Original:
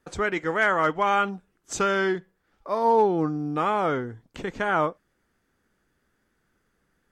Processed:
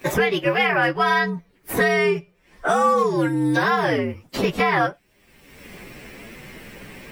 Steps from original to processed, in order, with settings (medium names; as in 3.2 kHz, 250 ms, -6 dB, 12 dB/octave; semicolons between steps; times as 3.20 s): frequency axis rescaled in octaves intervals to 118%; three bands compressed up and down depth 100%; trim +6 dB